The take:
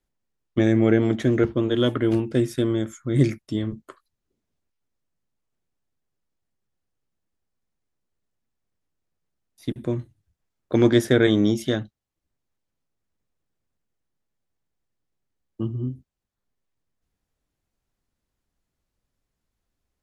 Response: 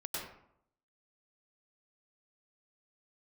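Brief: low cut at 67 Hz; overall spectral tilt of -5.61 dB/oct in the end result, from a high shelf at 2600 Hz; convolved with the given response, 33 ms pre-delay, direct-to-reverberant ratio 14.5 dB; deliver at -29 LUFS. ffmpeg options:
-filter_complex "[0:a]highpass=67,highshelf=f=2.6k:g=8,asplit=2[a][b];[1:a]atrim=start_sample=2205,adelay=33[c];[b][c]afir=irnorm=-1:irlink=0,volume=-16.5dB[d];[a][d]amix=inputs=2:normalize=0,volume=-7dB"

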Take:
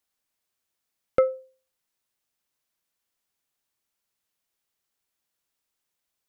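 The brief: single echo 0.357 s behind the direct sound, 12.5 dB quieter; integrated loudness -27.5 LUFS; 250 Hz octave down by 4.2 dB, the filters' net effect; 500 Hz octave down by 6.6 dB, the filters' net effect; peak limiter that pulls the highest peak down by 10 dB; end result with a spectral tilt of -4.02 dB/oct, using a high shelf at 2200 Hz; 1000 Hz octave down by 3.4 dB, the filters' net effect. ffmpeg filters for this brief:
-af "equalizer=f=250:t=o:g=-3.5,equalizer=f=500:t=o:g=-5,equalizer=f=1k:t=o:g=-6.5,highshelf=f=2.2k:g=5,alimiter=limit=-23.5dB:level=0:latency=1,aecho=1:1:357:0.237,volume=12dB"

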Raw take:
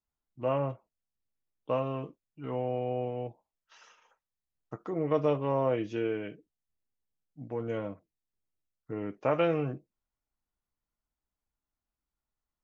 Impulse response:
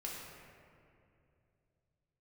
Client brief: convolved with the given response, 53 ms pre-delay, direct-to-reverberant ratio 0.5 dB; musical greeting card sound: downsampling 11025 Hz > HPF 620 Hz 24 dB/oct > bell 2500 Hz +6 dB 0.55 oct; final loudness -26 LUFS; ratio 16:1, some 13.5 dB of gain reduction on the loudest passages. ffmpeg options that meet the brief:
-filter_complex "[0:a]acompressor=threshold=-35dB:ratio=16,asplit=2[a][b];[1:a]atrim=start_sample=2205,adelay=53[c];[b][c]afir=irnorm=-1:irlink=0,volume=-0.5dB[d];[a][d]amix=inputs=2:normalize=0,aresample=11025,aresample=44100,highpass=f=620:w=0.5412,highpass=f=620:w=1.3066,equalizer=f=2.5k:t=o:w=0.55:g=6,volume=20dB"

